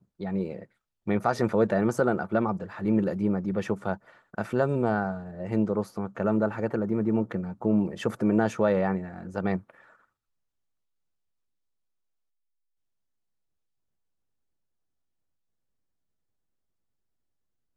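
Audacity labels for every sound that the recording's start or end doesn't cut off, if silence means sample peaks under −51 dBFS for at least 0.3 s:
1.060000	9.950000	sound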